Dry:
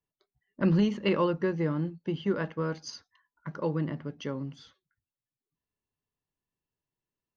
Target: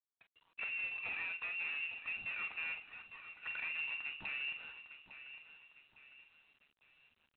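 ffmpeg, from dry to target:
-filter_complex "[0:a]aeval=exprs='if(lt(val(0),0),0.708*val(0),val(0))':c=same,asettb=1/sr,asplit=3[a][b][c];[a]atrim=end=1.884[d];[b]atrim=start=1.88:end=4.23,asetpts=PTS-STARTPTS,afade=t=in:d=0.004:c=qsin,afade=t=out:st=2.346:d=0.004:c=qsin,adynamicequalizer=threshold=0.00355:dfrequency=130:dqfactor=4.8:tfrequency=130:tqfactor=4.8:attack=5:release=100:ratio=0.375:range=1.5:mode=boostabove:tftype=bell[e];[c]atrim=start=4.226[f];[d][e]acrossfade=d=0.004:c1=hsin:c2=qsin[g];[g][f]acrossfade=d=0.004:c1=qsin:c2=hsin,acompressor=threshold=-42dB:ratio=4,aeval=exprs='(tanh(224*val(0)+0.15)-tanh(0.15))/224':c=same,asplit=2[h][i];[i]adelay=44,volume=-10.5dB[j];[h][j]amix=inputs=2:normalize=0,aecho=1:1:855|1710|2565|3420:0.251|0.105|0.0443|0.0186,lowpass=f=2.5k:t=q:w=0.5098,lowpass=f=2.5k:t=q:w=0.6013,lowpass=f=2.5k:t=q:w=0.9,lowpass=f=2.5k:t=q:w=2.563,afreqshift=-2900,volume=8.5dB" -ar 8000 -c:a adpcm_g726 -b:a 24k

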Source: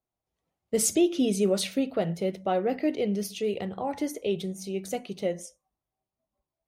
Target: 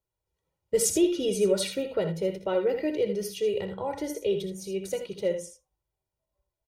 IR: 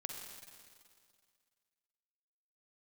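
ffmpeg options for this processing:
-filter_complex "[0:a]lowshelf=f=210:g=5,aecho=1:1:2.1:0.76,asplit=2[a][b];[b]aecho=0:1:62|79:0.251|0.335[c];[a][c]amix=inputs=2:normalize=0,volume=-3dB"

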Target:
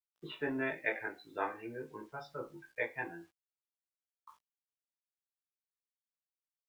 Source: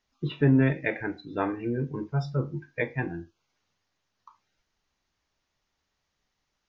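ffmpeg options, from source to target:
-filter_complex "[0:a]acrossover=split=450 4200:gain=0.126 1 0.2[a][b][c];[a][b][c]amix=inputs=3:normalize=0,acrusher=bits=10:mix=0:aa=0.000001,asplit=2[d][e];[e]adelay=18,volume=-2dB[f];[d][f]amix=inputs=2:normalize=0,volume=-6dB"

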